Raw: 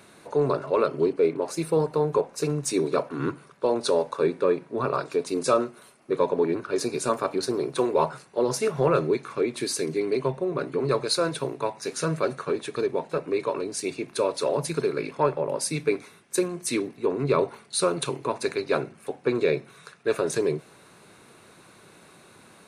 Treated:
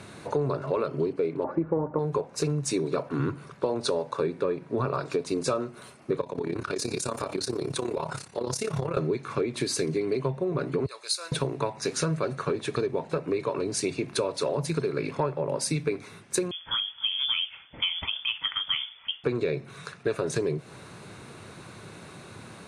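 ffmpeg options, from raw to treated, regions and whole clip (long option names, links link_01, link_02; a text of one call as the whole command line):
ffmpeg -i in.wav -filter_complex "[0:a]asettb=1/sr,asplit=3[link_01][link_02][link_03];[link_01]atrim=end=1.444[link_04];[link_02]atrim=start=1.44:end=1.99,asetpts=PTS-STARTPTS,afade=type=in:duration=0.004:curve=qsin,afade=type=out:start_time=0.546:duration=0.004:curve=qsin,lowpass=frequency=1400:width=0.5412,lowpass=frequency=1400:width=1.3066,acontrast=48,aecho=1:1:3.5:0.46,atrim=end_sample=24255[link_05];[link_03]atrim=start=1.986[link_06];[link_04][link_05]acrossfade=duration=0.004:curve1=hsin:curve2=qsin[link_07];[link_07][link_06]acrossfade=duration=0.004:curve1=qsin:curve2=hsin,asettb=1/sr,asplit=3[link_08][link_09][link_10];[link_08]atrim=end=6.214[link_11];[link_09]atrim=start=6.21:end=8.97,asetpts=PTS-STARTPTS,afade=type=in:duration=0.004:curve=qsin,afade=type=out:start_time=2.756:duration=0.004:curve=qsin,highshelf=frequency=3400:gain=11,tremolo=f=34:d=0.788,acompressor=threshold=-31dB:ratio=6:attack=3.2:release=140:knee=1:detection=peak[link_12];[link_10]atrim=start=8.966[link_13];[link_11][link_12]acrossfade=duration=0.004:curve1=hsin:curve2=qsin[link_14];[link_14][link_13]acrossfade=duration=0.004:curve1=qsin:curve2=hsin,asettb=1/sr,asplit=3[link_15][link_16][link_17];[link_15]atrim=end=10.864[link_18];[link_16]atrim=start=10.86:end=11.32,asetpts=PTS-STARTPTS,afade=type=in:duration=0.004:curve=qsin,afade=type=out:start_time=0.456:duration=0.004:curve=qsin,highpass=410,aderivative[link_19];[link_17]atrim=start=11.316[link_20];[link_18][link_19]acrossfade=duration=0.004:curve1=hsin:curve2=qsin[link_21];[link_21][link_20]acrossfade=duration=0.004:curve1=qsin:curve2=hsin,asettb=1/sr,asplit=3[link_22][link_23][link_24];[link_22]atrim=end=16.514[link_25];[link_23]atrim=start=16.51:end=19.24,asetpts=PTS-STARTPTS,afade=type=in:duration=0.004:curve=qsin,afade=type=out:start_time=2.726:duration=0.004:curve=qsin,flanger=delay=3.6:depth=3.9:regen=-81:speed=1.9:shape=sinusoidal,lowpass=frequency=3100:width_type=q:width=0.5098,lowpass=frequency=3100:width_type=q:width=0.6013,lowpass=frequency=3100:width_type=q:width=0.9,lowpass=frequency=3100:width_type=q:width=2.563,afreqshift=-3600[link_26];[link_24]atrim=start=19.236[link_27];[link_25][link_26]acrossfade=duration=0.004:curve1=hsin:curve2=qsin[link_28];[link_28][link_27]acrossfade=duration=0.004:curve1=qsin:curve2=hsin,lowpass=8900,equalizer=frequency=100:width=0.95:gain=10,acompressor=threshold=-30dB:ratio=6,volume=5.5dB" out.wav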